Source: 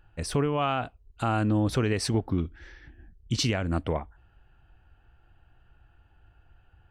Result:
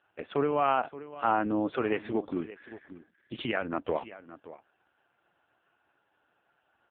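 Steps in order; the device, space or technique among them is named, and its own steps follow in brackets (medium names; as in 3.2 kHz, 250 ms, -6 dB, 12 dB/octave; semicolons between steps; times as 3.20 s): 0.67–1.44 s: dynamic bell 950 Hz, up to +5 dB, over -44 dBFS, Q 3.3; satellite phone (band-pass 330–3100 Hz; delay 575 ms -15.5 dB; trim +2 dB; AMR-NB 4.75 kbps 8 kHz)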